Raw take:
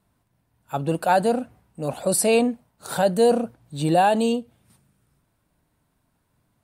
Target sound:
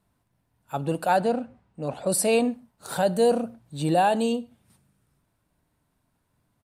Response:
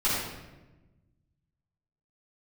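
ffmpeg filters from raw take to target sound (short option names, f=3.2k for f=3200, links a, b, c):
-filter_complex "[0:a]asettb=1/sr,asplit=3[a][b][c];[a]atrim=end=1.174[d];[b]atrim=start=1.17:end=2.1,asetpts=PTS-STARTPTS,afade=t=in:d=0.004:c=qsin,afade=t=out:st=0.926:d=0.004:c=qsin,adynamicsmooth=sensitivity=2.5:basefreq=5.7k[e];[c]atrim=start=2.096[f];[d][e]acrossfade=d=0.004:c1=hsin:c2=qsin[g];[g][f]acrossfade=d=0.004:c1=qsin:c2=hsin,asplit=2[h][i];[1:a]atrim=start_sample=2205,afade=t=out:st=0.19:d=0.01,atrim=end_sample=8820[j];[i][j]afir=irnorm=-1:irlink=0,volume=-30.5dB[k];[h][k]amix=inputs=2:normalize=0,aresample=32000,aresample=44100,volume=-3dB"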